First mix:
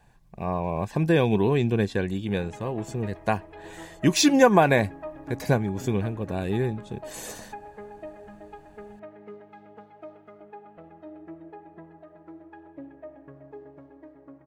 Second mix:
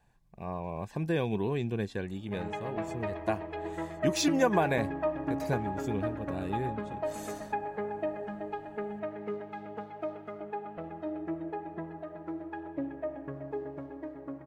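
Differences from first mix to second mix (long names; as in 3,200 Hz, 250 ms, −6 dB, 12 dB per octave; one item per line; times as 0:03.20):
speech −9.0 dB
background +7.0 dB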